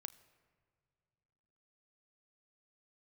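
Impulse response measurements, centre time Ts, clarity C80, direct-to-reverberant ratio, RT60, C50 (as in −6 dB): 6 ms, 18.5 dB, 10.5 dB, non-exponential decay, 17.0 dB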